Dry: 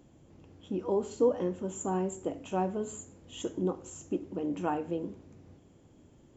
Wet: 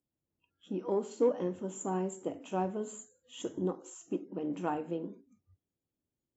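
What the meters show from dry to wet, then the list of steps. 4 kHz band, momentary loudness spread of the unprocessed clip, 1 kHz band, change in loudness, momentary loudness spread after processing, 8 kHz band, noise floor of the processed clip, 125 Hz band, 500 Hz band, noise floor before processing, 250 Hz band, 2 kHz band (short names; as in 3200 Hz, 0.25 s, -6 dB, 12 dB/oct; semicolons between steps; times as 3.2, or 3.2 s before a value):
-3.0 dB, 12 LU, -2.5 dB, -2.5 dB, 13 LU, n/a, under -85 dBFS, -3.0 dB, -2.5 dB, -60 dBFS, -2.5 dB, -2.0 dB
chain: added harmonics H 7 -37 dB, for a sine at -14.5 dBFS; spectral noise reduction 29 dB; gain -2 dB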